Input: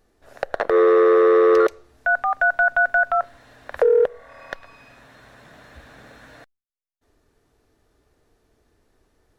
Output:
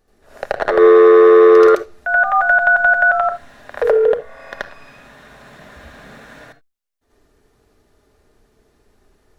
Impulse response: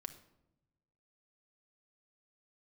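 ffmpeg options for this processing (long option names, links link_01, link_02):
-filter_complex "[0:a]asplit=2[link_01][link_02];[1:a]atrim=start_sample=2205,atrim=end_sample=3969,adelay=80[link_03];[link_02][link_03]afir=irnorm=-1:irlink=0,volume=10dB[link_04];[link_01][link_04]amix=inputs=2:normalize=0,volume=-1dB"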